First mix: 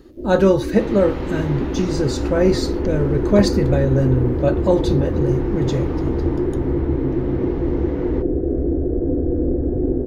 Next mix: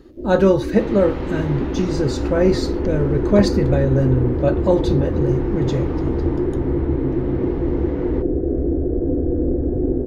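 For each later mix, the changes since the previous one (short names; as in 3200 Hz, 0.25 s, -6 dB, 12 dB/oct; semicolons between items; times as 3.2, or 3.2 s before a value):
master: add high shelf 6100 Hz -6 dB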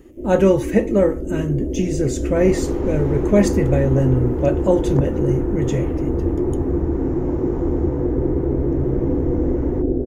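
speech: add band shelf 2500 Hz +11 dB 1 oct; second sound: entry +1.60 s; master: add EQ curve 710 Hz 0 dB, 4300 Hz -11 dB, 6800 Hz +8 dB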